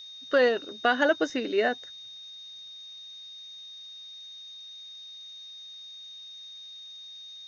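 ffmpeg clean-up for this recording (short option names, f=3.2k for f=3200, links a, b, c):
-af "bandreject=f=3.7k:w=30,afftdn=nr=28:nf=-45"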